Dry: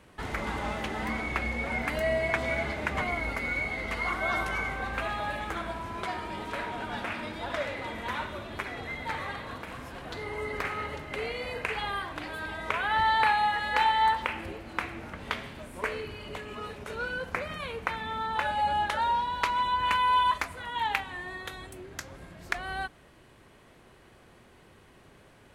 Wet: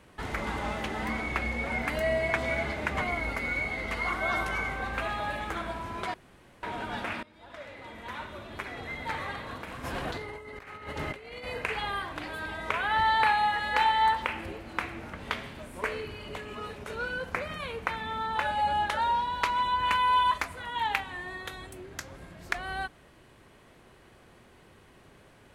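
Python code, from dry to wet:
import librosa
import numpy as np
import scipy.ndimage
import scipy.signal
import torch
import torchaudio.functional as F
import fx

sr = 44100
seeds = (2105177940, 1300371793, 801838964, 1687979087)

y = fx.over_compress(x, sr, threshold_db=-40.0, ratio=-0.5, at=(9.83, 11.45), fade=0.02)
y = fx.edit(y, sr, fx.room_tone_fill(start_s=6.14, length_s=0.49),
    fx.fade_in_from(start_s=7.23, length_s=1.88, floor_db=-23.5), tone=tone)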